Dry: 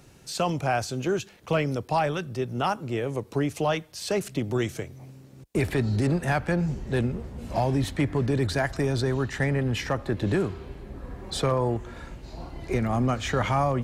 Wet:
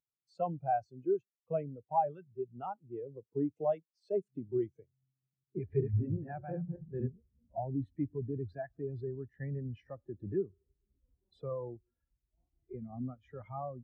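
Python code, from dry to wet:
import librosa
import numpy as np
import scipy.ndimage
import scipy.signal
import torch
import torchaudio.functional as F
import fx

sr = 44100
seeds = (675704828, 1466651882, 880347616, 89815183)

y = fx.reverse_delay_fb(x, sr, ms=119, feedback_pct=43, wet_db=-1.5, at=(5.1, 7.11))
y = fx.low_shelf(y, sr, hz=180.0, db=-4.0)
y = fx.rider(y, sr, range_db=4, speed_s=2.0)
y = fx.spectral_expand(y, sr, expansion=2.5)
y = y * librosa.db_to_amplitude(-7.5)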